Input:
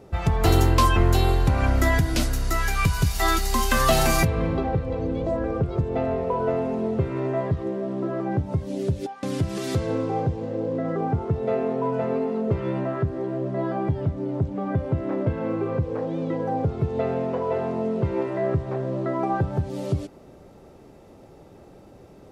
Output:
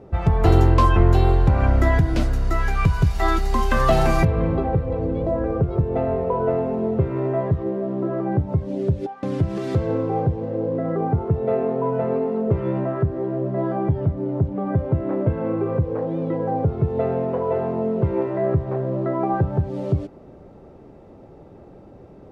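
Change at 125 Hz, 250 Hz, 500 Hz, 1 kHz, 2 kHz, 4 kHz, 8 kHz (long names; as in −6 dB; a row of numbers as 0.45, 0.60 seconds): +4.0 dB, +2.5 dB, +3.0 dB, +1.5 dB, −2.0 dB, can't be measured, below −10 dB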